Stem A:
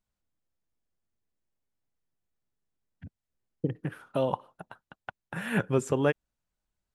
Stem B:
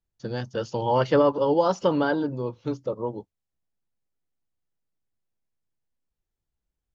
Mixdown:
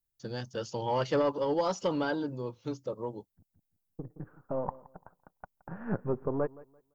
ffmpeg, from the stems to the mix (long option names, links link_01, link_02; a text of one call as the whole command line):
ffmpeg -i stem1.wav -i stem2.wav -filter_complex "[0:a]aeval=exprs='if(lt(val(0),0),0.447*val(0),val(0))':channel_layout=same,lowpass=frequency=1200:width=0.5412,lowpass=frequency=1200:width=1.3066,adelay=350,volume=-2dB,asplit=2[link_01][link_02];[link_02]volume=-20.5dB[link_03];[1:a]asoftclip=type=tanh:threshold=-11dB,aemphasis=mode=production:type=50fm,volume=-6.5dB,asplit=2[link_04][link_05];[link_05]apad=whole_len=321922[link_06];[link_01][link_06]sidechaincompress=threshold=-52dB:ratio=4:attack=5.9:release=976[link_07];[link_03]aecho=0:1:170|340|510|680:1|0.24|0.0576|0.0138[link_08];[link_07][link_04][link_08]amix=inputs=3:normalize=0" out.wav